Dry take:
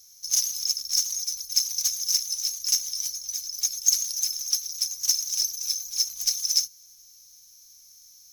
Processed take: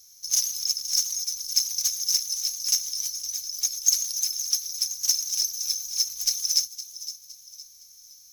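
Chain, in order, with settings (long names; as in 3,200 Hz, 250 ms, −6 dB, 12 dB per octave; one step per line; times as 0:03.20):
delay with a high-pass on its return 513 ms, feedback 38%, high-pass 3,000 Hz, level −13 dB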